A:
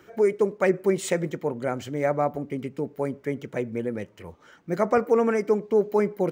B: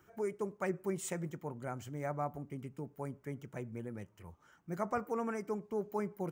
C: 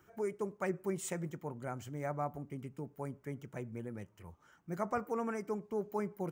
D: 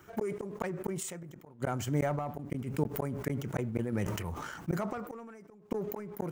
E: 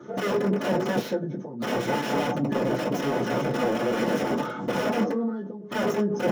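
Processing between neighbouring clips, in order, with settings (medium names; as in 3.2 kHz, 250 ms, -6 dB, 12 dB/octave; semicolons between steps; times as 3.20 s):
graphic EQ 250/500/2000/4000 Hz -6/-11/-7/-10 dB; trim -5.5 dB
no audible change
waveshaping leveller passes 1; inverted gate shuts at -29 dBFS, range -40 dB; decay stretcher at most 32 dB/s; trim +9 dB
knee-point frequency compression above 1.1 kHz 1.5:1; integer overflow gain 33.5 dB; reverberation RT60 0.15 s, pre-delay 3 ms, DRR -8 dB; trim -6.5 dB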